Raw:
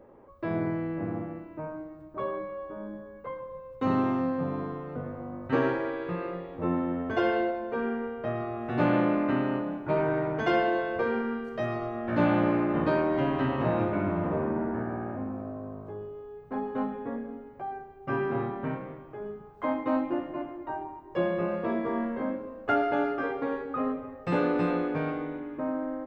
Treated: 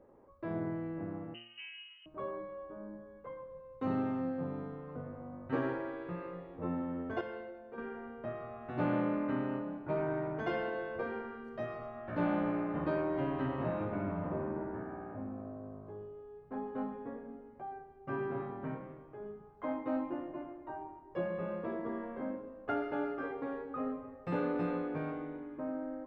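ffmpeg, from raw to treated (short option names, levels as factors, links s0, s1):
-filter_complex "[0:a]asettb=1/sr,asplit=3[s0][s1][s2];[s0]atrim=end=1.344[s3];[s1]atrim=start=1.34:end=2.06,asetpts=PTS-STARTPTS,afade=t=in:d=0.004:c=qsin,afade=t=out:st=0.716:d=0.004:c=qsin,lowpass=f=2700:t=q:w=0.5098,lowpass=f=2700:t=q:w=0.6013,lowpass=f=2700:t=q:w=0.9,lowpass=f=2700:t=q:w=2.563,afreqshift=-3200[s4];[s2]atrim=start=2.056[s5];[s3][s4]acrossfade=d=0.004:c1=hsin:c2=qsin[s6];[s6][s5]acrossfade=d=0.004:c1=qsin:c2=hsin,asplit=3[s7][s8][s9];[s7]atrim=end=7.212[s10];[s8]atrim=start=7.208:end=7.782,asetpts=PTS-STARTPTS,volume=0.447[s11];[s9]atrim=start=7.778[s12];[s10][s11]acrossfade=d=0.004:c1=hsin:c2=hsin[s13];[s13][s12]acrossfade=d=0.004:c1=hsin:c2=hsin,highshelf=f=2900:g=-9,bandreject=f=116.3:t=h:w=4,bandreject=f=232.6:t=h:w=4,bandreject=f=348.9:t=h:w=4,bandreject=f=465.2:t=h:w=4,bandreject=f=581.5:t=h:w=4,bandreject=f=697.8:t=h:w=4,bandreject=f=814.1:t=h:w=4,bandreject=f=930.4:t=h:w=4,bandreject=f=1046.7:t=h:w=4,bandreject=f=1163:t=h:w=4,bandreject=f=1279.3:t=h:w=4,bandreject=f=1395.6:t=h:w=4,bandreject=f=1511.9:t=h:w=4,bandreject=f=1628.2:t=h:w=4,bandreject=f=1744.5:t=h:w=4,bandreject=f=1860.8:t=h:w=4,bandreject=f=1977.1:t=h:w=4,bandreject=f=2093.4:t=h:w=4,bandreject=f=2209.7:t=h:w=4,bandreject=f=2326:t=h:w=4,bandreject=f=2442.3:t=h:w=4,bandreject=f=2558.6:t=h:w=4,bandreject=f=2674.9:t=h:w=4,bandreject=f=2791.2:t=h:w=4,bandreject=f=2907.5:t=h:w=4,bandreject=f=3023.8:t=h:w=4,bandreject=f=3140.1:t=h:w=4,bandreject=f=3256.4:t=h:w=4,bandreject=f=3372.7:t=h:w=4,volume=0.447"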